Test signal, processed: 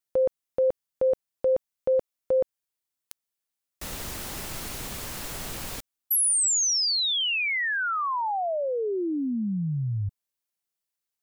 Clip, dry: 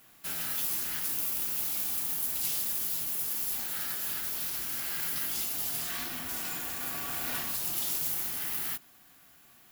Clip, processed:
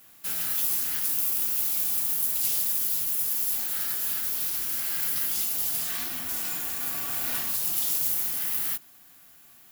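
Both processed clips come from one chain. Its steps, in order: high shelf 5100 Hz +6 dB

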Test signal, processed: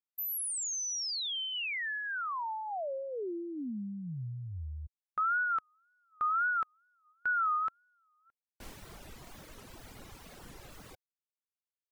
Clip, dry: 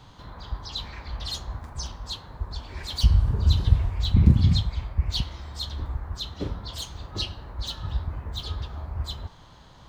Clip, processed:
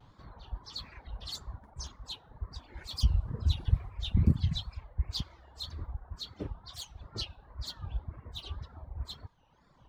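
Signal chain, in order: wow and flutter 150 cents; reverb removal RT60 1.4 s; mismatched tape noise reduction decoder only; gain -7 dB

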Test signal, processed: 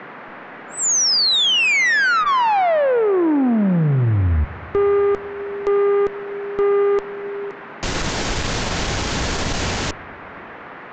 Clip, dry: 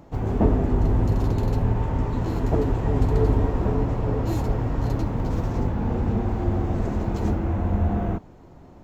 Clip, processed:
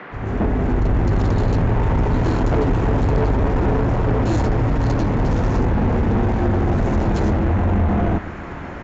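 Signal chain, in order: opening faded in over 1.21 s; notch 1200 Hz, Q 16; in parallel at +1 dB: compressor, threshold -28 dBFS; on the sum: tube stage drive 22 dB, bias 0.25; band noise 150–1900 Hz -45 dBFS; on a send: analogue delay 0.122 s, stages 2048, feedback 74%, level -20.5 dB; on the sum: downsampling 16000 Hz; gain +8 dB

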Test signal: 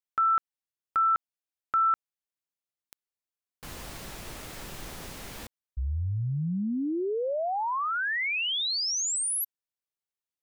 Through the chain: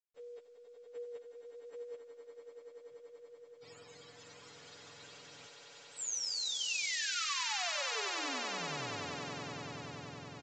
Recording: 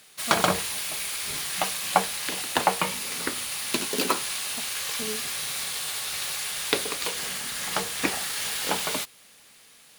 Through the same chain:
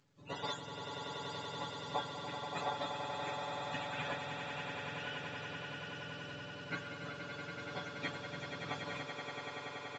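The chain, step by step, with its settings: spectrum mirrored in octaves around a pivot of 800 Hz; differentiator; AGC gain up to 5 dB; LPF 2500 Hz 6 dB/oct; comb 7 ms, depth 63%; swelling echo 95 ms, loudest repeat 8, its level -8 dB; µ-law 128 kbps 16000 Hz

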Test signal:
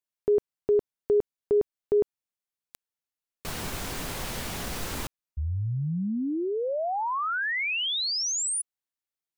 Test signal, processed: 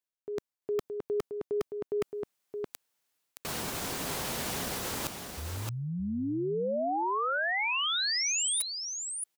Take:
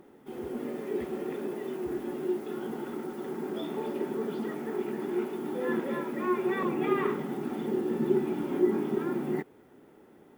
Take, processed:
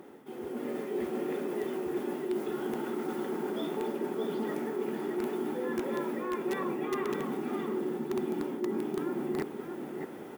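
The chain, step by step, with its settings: dynamic EQ 2100 Hz, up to -3 dB, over -42 dBFS, Q 0.74; reverse; compressor 5:1, threshold -44 dBFS; reverse; echo 0.62 s -6.5 dB; AGC gain up to 7 dB; HPF 190 Hz 6 dB/oct; in parallel at -4.5 dB: wrapped overs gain 28.5 dB; on the sum: gain +1.5 dB

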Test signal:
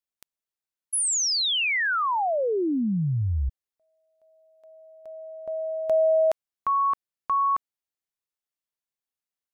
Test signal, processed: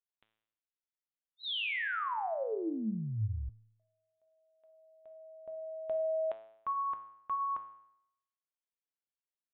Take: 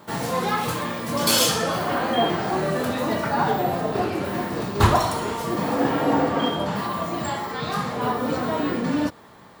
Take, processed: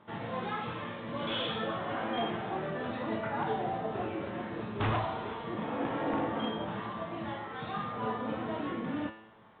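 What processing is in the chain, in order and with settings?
resonator 110 Hz, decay 0.76 s, harmonics all, mix 80%; wavefolder -23.5 dBFS; downsampling 8000 Hz

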